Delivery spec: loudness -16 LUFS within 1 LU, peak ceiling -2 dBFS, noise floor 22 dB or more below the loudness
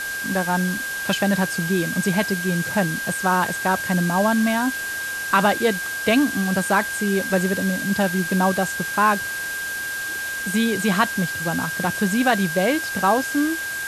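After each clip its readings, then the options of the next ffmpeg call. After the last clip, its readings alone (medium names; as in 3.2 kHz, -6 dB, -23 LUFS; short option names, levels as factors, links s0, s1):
steady tone 1.6 kHz; tone level -26 dBFS; noise floor -28 dBFS; noise floor target -44 dBFS; loudness -21.5 LUFS; peak level -4.0 dBFS; loudness target -16.0 LUFS
-> -af "bandreject=f=1600:w=30"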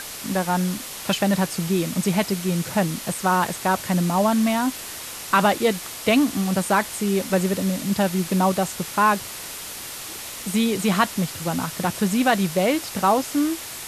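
steady tone not found; noise floor -35 dBFS; noise floor target -45 dBFS
-> -af "afftdn=nr=10:nf=-35"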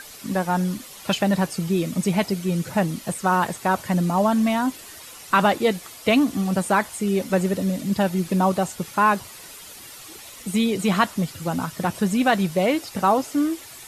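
noise floor -42 dBFS; noise floor target -45 dBFS
-> -af "afftdn=nr=6:nf=-42"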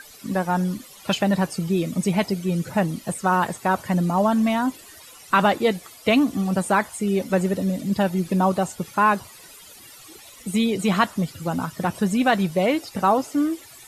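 noise floor -46 dBFS; loudness -22.5 LUFS; peak level -5.0 dBFS; loudness target -16.0 LUFS
-> -af "volume=2.11,alimiter=limit=0.794:level=0:latency=1"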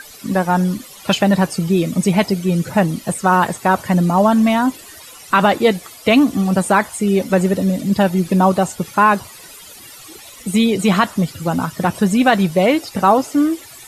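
loudness -16.5 LUFS; peak level -2.0 dBFS; noise floor -39 dBFS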